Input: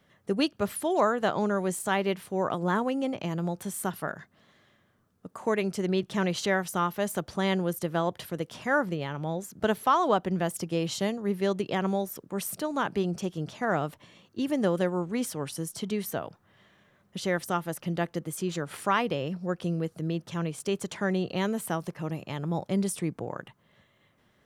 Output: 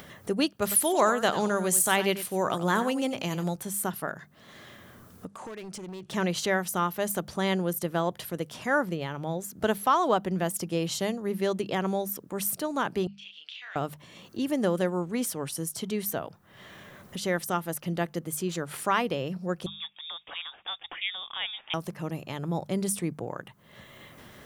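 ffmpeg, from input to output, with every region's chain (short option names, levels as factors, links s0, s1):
-filter_complex "[0:a]asettb=1/sr,asplit=3[s0][s1][s2];[s0]atrim=end=0.624[s3];[s1]atrim=start=0.62:end=3.56,asetpts=PTS-STARTPTS,afade=t=in:d=0.004:c=qsin,afade=t=out:st=2.936:d=0.004:c=qsin,highshelf=f=2100:g=9,aecho=1:1:93:0.224,atrim=end_sample=129654[s4];[s2]atrim=start=3.556[s5];[s3][s4]acrossfade=d=0.004:c1=hsin:c2=qsin[s6];[s6][s5]acrossfade=d=0.004:c1=qsin:c2=hsin,asettb=1/sr,asplit=3[s7][s8][s9];[s7]atrim=end=5.274[s10];[s8]atrim=start=5.27:end=6.13,asetpts=PTS-STARTPTS,afade=t=in:d=0.004:c=qsin,afade=t=out:st=0.856:d=0.004:c=qsin,lowpass=f=9600:w=0.5412,lowpass=f=9600:w=1.3066,acompressor=threshold=0.00708:ratio=3:attack=3.2:release=140:knee=1:detection=peak,asoftclip=type=hard:threshold=0.01[s11];[s9]atrim=start=6.126[s12];[s10][s11]acrossfade=d=0.004:c1=hsin:c2=qsin[s13];[s13][s12]acrossfade=d=0.004:c1=qsin:c2=hsin,asettb=1/sr,asplit=3[s14][s15][s16];[s14]atrim=end=13.074[s17];[s15]atrim=start=13.07:end=13.76,asetpts=PTS-STARTPTS,afade=t=in:d=0.004:c=qsin,afade=t=out:st=0.686:d=0.004:c=qsin,asuperpass=centerf=3000:order=4:qfactor=2.3,asplit=2[s18][s19];[s19]adelay=32,volume=0.708[s20];[s18][s20]amix=inputs=2:normalize=0,atrim=end_sample=30429[s21];[s16]atrim=start=13.756[s22];[s17][s21]acrossfade=d=0.004:c1=hsin:c2=qsin[s23];[s23][s22]acrossfade=d=0.004:c1=qsin:c2=hsin,asettb=1/sr,asplit=3[s24][s25][s26];[s24]atrim=end=19.664[s27];[s25]atrim=start=19.66:end=21.74,asetpts=PTS-STARTPTS,afade=t=in:d=0.004:c=qsin,afade=t=out:st=2.076:d=0.004:c=qsin,highpass=630,lowpass=f=3300:t=q:w=0.5098,lowpass=f=3300:t=q:w=0.6013,lowpass=f=3300:t=q:w=0.9,lowpass=f=3300:t=q:w=2.563,afreqshift=-3900[s28];[s26]atrim=start=21.736[s29];[s27][s28]acrossfade=d=0.004:c1=hsin:c2=qsin[s30];[s30][s29]acrossfade=d=0.004:c1=qsin:c2=hsin,highshelf=f=9900:g=10,bandreject=f=50:t=h:w=6,bandreject=f=100:t=h:w=6,bandreject=f=150:t=h:w=6,bandreject=f=200:t=h:w=6,acompressor=mode=upward:threshold=0.02:ratio=2.5"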